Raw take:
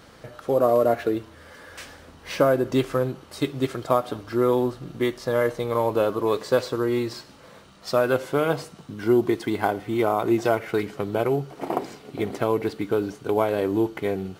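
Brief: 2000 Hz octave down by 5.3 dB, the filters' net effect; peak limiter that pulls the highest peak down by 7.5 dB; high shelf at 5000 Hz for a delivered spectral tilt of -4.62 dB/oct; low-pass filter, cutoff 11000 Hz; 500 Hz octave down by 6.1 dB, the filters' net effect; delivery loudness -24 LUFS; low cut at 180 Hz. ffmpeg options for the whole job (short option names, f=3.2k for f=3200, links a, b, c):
-af "highpass=180,lowpass=11k,equalizer=f=500:t=o:g=-7.5,equalizer=f=2k:t=o:g=-7.5,highshelf=f=5k:g=3.5,volume=7dB,alimiter=limit=-11dB:level=0:latency=1"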